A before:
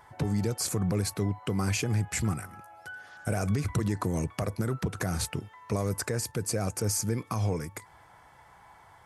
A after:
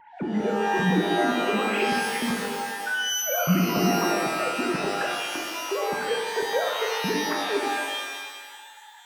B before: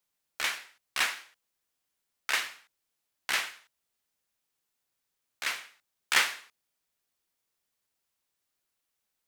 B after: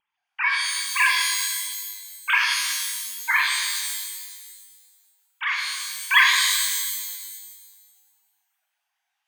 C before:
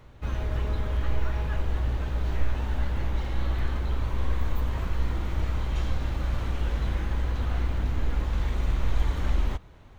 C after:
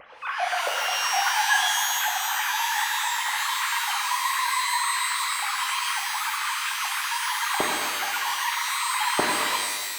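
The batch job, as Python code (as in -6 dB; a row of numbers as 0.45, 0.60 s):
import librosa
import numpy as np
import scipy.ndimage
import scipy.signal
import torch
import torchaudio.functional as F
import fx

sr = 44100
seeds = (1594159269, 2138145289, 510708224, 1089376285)

y = fx.sine_speech(x, sr)
y = fx.vibrato(y, sr, rate_hz=0.76, depth_cents=7.4)
y = fx.rev_shimmer(y, sr, seeds[0], rt60_s=1.5, semitones=12, shimmer_db=-2, drr_db=0.5)
y = y * 10.0 ** (-26 / 20.0) / np.sqrt(np.mean(np.square(y)))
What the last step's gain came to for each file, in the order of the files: -0.5, +7.0, -6.0 dB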